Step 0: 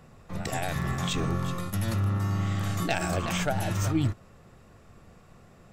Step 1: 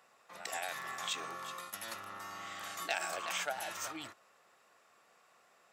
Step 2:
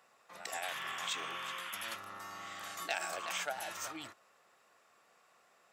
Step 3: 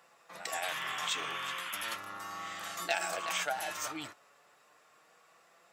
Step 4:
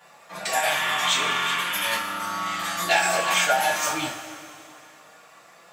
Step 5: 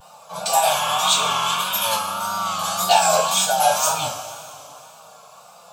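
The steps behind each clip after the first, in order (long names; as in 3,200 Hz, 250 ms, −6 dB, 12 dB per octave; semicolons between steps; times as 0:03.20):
high-pass filter 790 Hz 12 dB per octave; level −4.5 dB
sound drawn into the spectrogram noise, 0:00.63–0:01.96, 920–3,600 Hz −44 dBFS; level −1 dB
flanger 0.35 Hz, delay 5.8 ms, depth 1.2 ms, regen +56%; level +8 dB
coupled-rooms reverb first 0.29 s, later 2.7 s, from −17 dB, DRR −9.5 dB; level +3 dB
gain on a spectral selection 0:03.27–0:03.60, 280–3,000 Hz −6 dB; tape wow and flutter 81 cents; phaser with its sweep stopped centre 790 Hz, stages 4; level +8 dB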